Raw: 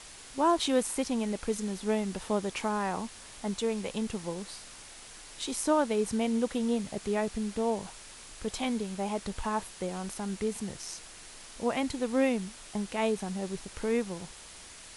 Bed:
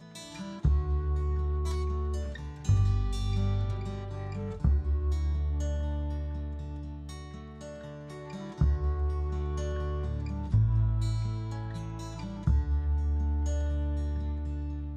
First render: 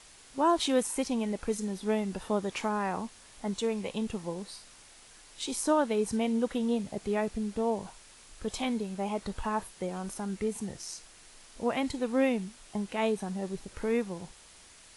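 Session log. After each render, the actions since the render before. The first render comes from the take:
noise reduction from a noise print 6 dB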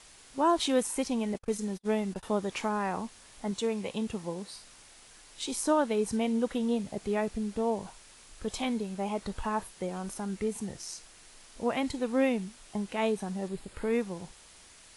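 0:01.34–0:02.23: noise gate −39 dBFS, range −40 dB
0:03.51–0:04.56: high-pass filter 46 Hz
0:13.48–0:13.93: parametric band 5,900 Hz −12.5 dB 0.22 octaves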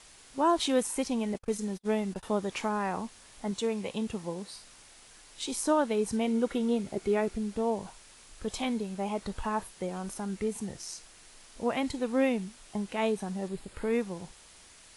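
0:06.27–0:07.37: hollow resonant body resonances 370/1,400/2,200 Hz, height 9 dB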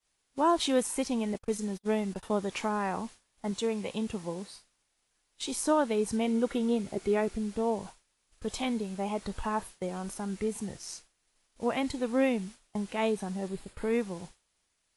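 downward expander −40 dBFS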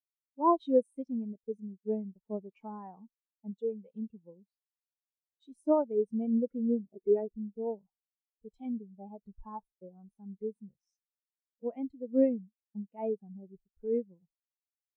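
every bin expanded away from the loudest bin 2.5 to 1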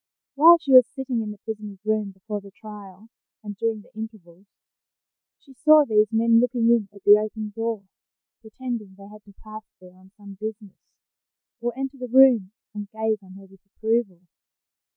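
level +10 dB

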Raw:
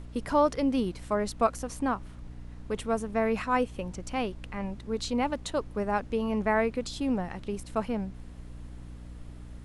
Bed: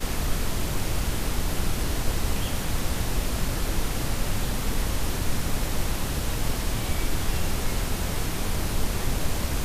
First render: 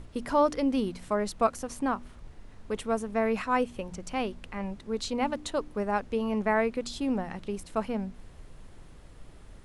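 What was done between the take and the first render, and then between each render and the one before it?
hum removal 60 Hz, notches 5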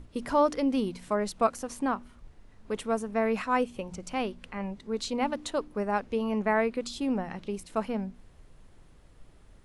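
noise reduction from a noise print 6 dB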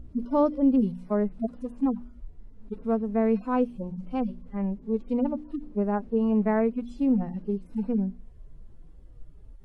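harmonic-percussive split with one part muted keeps harmonic
tilt shelving filter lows +9 dB, about 650 Hz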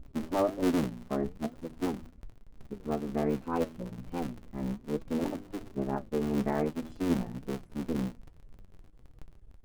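sub-harmonics by changed cycles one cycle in 3, muted
flanger 1.2 Hz, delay 5.9 ms, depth 6.3 ms, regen +65%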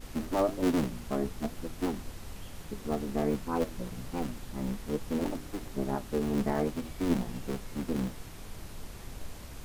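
mix in bed −17.5 dB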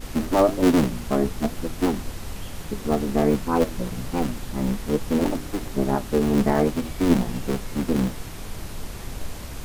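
level +9.5 dB

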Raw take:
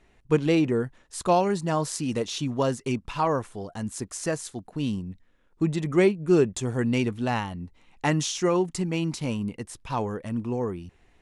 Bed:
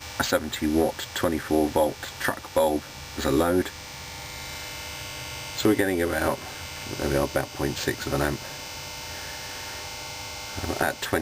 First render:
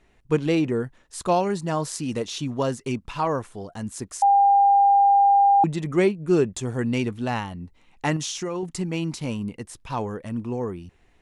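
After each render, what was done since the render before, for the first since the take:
0:04.22–0:05.64: beep over 800 Hz −13 dBFS
0:08.16–0:08.63: downward compressor 5 to 1, threshold −25 dBFS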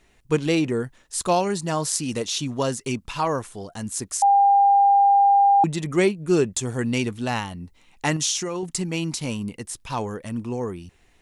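high-shelf EQ 3,300 Hz +10 dB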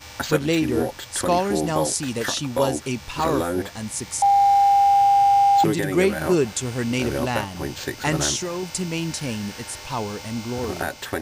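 mix in bed −2.5 dB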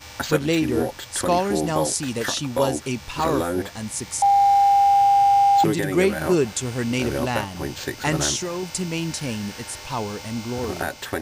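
no processing that can be heard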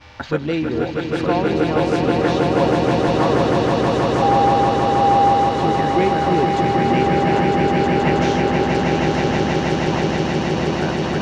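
high-frequency loss of the air 240 metres
echo that builds up and dies away 159 ms, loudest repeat 8, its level −4 dB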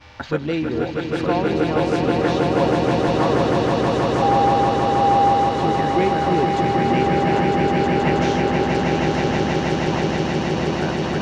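level −1.5 dB

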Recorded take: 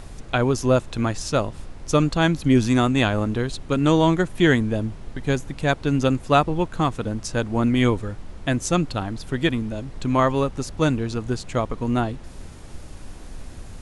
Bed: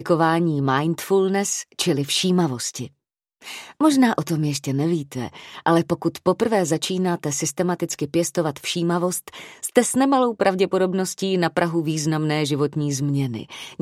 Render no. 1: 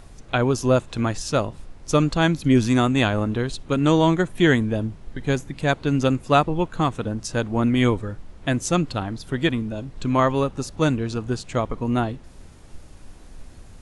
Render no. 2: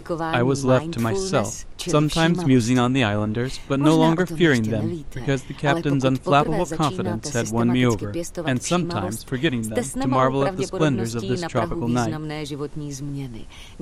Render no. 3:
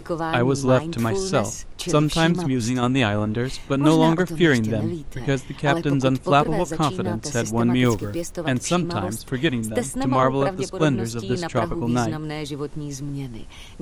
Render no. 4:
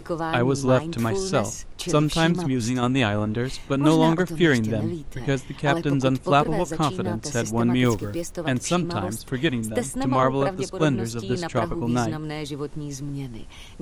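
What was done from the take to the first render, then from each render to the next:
noise reduction from a noise print 6 dB
mix in bed −8 dB
0:02.32–0:02.83: downward compressor, threshold −18 dBFS; 0:07.85–0:08.32: log-companded quantiser 6 bits; 0:10.23–0:11.30: multiband upward and downward expander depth 40%
level −1.5 dB

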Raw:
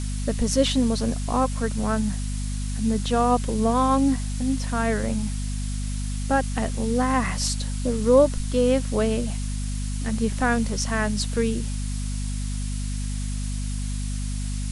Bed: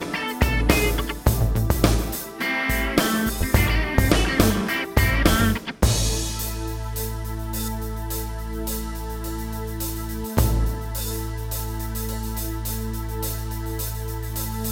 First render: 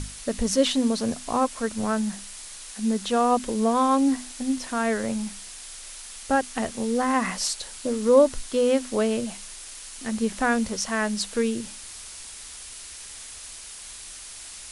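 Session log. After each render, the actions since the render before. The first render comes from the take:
mains-hum notches 50/100/150/200/250 Hz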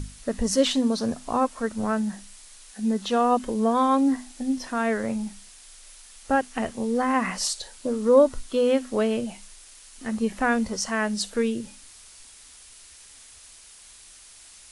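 noise reduction from a noise print 8 dB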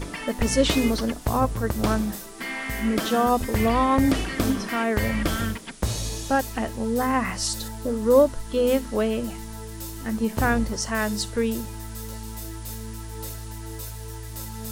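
mix in bed −7.5 dB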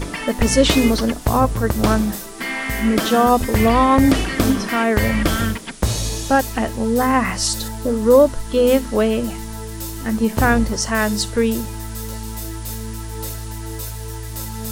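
level +6.5 dB
brickwall limiter −3 dBFS, peak gain reduction 3 dB

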